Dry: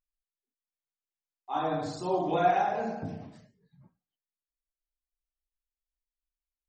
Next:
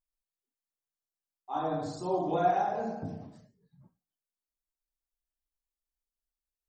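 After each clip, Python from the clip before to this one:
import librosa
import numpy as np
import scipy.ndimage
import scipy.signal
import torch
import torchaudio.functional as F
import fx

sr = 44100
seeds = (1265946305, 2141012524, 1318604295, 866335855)

y = fx.peak_eq(x, sr, hz=2400.0, db=-9.0, octaves=1.3)
y = y * 10.0 ** (-1.0 / 20.0)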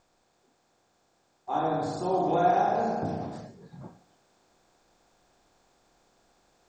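y = fx.bin_compress(x, sr, power=0.6)
y = fx.rider(y, sr, range_db=4, speed_s=2.0)
y = y * 10.0 ** (1.0 / 20.0)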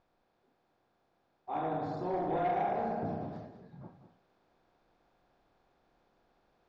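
y = 10.0 ** (-21.0 / 20.0) * np.tanh(x / 10.0 ** (-21.0 / 20.0))
y = fx.air_absorb(y, sr, metres=250.0)
y = y + 10.0 ** (-10.5 / 20.0) * np.pad(y, (int(196 * sr / 1000.0), 0))[:len(y)]
y = y * 10.0 ** (-4.5 / 20.0)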